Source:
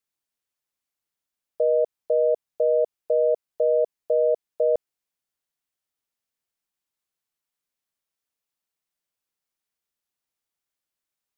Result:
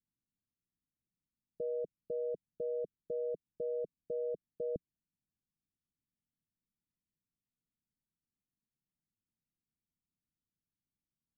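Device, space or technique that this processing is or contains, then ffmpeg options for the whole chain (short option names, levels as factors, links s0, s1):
the neighbour's flat through the wall: -af "lowpass=f=270:w=0.5412,lowpass=f=270:w=1.3066,equalizer=f=170:t=o:w=0.77:g=4,volume=2"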